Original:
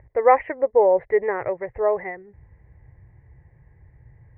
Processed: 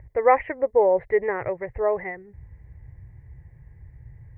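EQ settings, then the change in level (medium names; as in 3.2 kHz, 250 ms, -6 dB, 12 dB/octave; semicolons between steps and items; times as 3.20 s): bass shelf 220 Hz +11.5 dB; treble shelf 2.2 kHz +10.5 dB; -4.5 dB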